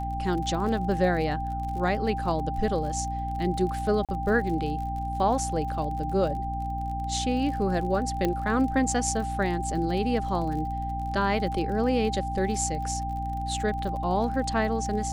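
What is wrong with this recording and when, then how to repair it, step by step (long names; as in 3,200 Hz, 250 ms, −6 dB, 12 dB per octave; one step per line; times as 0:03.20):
surface crackle 45 per second −35 dBFS
mains hum 60 Hz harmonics 5 −33 dBFS
whistle 790 Hz −31 dBFS
0:04.05–0:04.09: drop-out 37 ms
0:08.25: click −13 dBFS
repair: click removal
hum removal 60 Hz, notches 5
notch filter 790 Hz, Q 30
repair the gap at 0:04.05, 37 ms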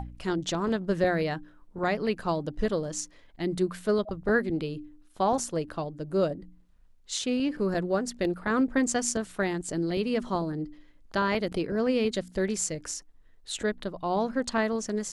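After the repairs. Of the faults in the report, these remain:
0:08.25: click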